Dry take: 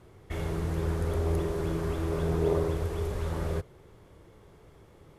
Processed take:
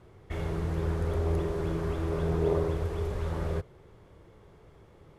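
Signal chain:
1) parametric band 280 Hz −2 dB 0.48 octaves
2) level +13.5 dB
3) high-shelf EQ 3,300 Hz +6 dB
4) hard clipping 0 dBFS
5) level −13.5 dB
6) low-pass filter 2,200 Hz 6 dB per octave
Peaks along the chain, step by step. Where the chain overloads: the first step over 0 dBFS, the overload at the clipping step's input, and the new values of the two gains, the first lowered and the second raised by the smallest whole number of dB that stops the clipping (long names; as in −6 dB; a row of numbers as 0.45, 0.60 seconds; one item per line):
−15.5, −2.0, −2.0, −2.0, −15.5, −16.0 dBFS
no step passes full scale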